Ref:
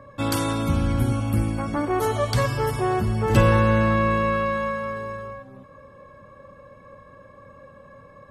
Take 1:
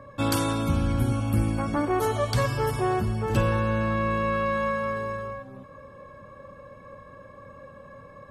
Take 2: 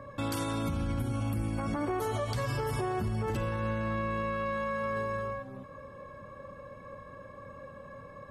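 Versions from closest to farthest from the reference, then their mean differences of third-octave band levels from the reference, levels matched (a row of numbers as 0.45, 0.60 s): 1, 2; 2.5, 4.5 dB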